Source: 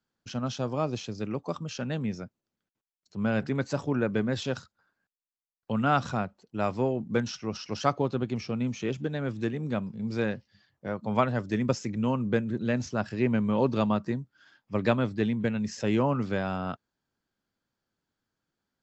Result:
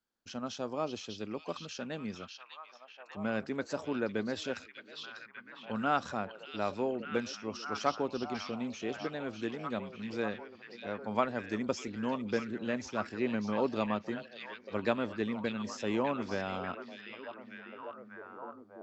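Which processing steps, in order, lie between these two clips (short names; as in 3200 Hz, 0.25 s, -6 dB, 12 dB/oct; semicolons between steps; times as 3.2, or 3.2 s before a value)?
bell 130 Hz -14.5 dB 0.75 oct; on a send: delay with a stepping band-pass 0.596 s, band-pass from 3600 Hz, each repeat -0.7 oct, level -1.5 dB; on the sum: gain -4.5 dB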